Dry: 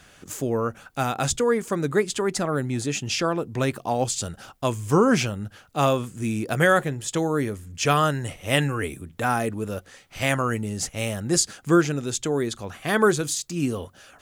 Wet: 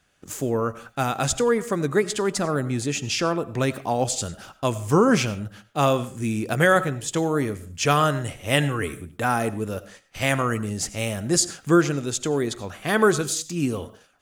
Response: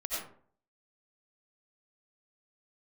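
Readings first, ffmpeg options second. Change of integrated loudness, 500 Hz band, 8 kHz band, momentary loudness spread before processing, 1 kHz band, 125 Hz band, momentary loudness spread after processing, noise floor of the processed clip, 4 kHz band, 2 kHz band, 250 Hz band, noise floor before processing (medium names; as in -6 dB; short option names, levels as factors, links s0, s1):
+1.0 dB, +1.0 dB, +1.0 dB, 10 LU, +1.0 dB, +1.0 dB, 10 LU, -58 dBFS, +1.0 dB, +1.0 dB, +1.0 dB, -54 dBFS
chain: -filter_complex "[0:a]agate=range=0.178:threshold=0.00501:ratio=16:detection=peak,asplit=2[s0][s1];[1:a]atrim=start_sample=2205,afade=t=out:st=0.27:d=0.01,atrim=end_sample=12348[s2];[s1][s2]afir=irnorm=-1:irlink=0,volume=0.126[s3];[s0][s3]amix=inputs=2:normalize=0"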